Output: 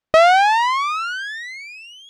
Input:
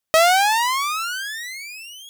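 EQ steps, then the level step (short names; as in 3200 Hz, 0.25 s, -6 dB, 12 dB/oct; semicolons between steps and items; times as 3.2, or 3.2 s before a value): tape spacing loss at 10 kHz 24 dB; +6.0 dB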